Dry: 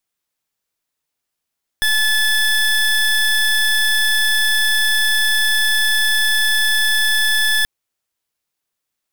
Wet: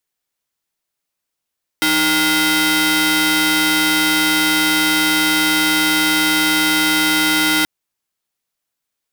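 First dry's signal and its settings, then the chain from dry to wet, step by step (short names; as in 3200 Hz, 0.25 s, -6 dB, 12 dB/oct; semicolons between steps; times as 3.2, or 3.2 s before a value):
pulse 1730 Hz, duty 25% -15.5 dBFS 5.83 s
polarity switched at an audio rate 310 Hz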